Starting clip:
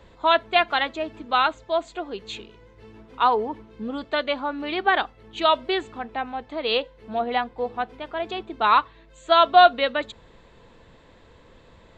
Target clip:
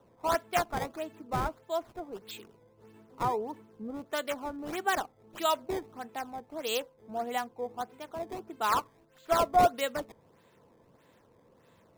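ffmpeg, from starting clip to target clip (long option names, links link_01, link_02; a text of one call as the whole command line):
ffmpeg -i in.wav -filter_complex "[0:a]highpass=frequency=100:width=0.5412,highpass=frequency=100:width=1.3066,acrossover=split=1300[link_01][link_02];[link_02]acrusher=samples=18:mix=1:aa=0.000001:lfo=1:lforange=28.8:lforate=1.6[link_03];[link_01][link_03]amix=inputs=2:normalize=0,volume=-8.5dB" out.wav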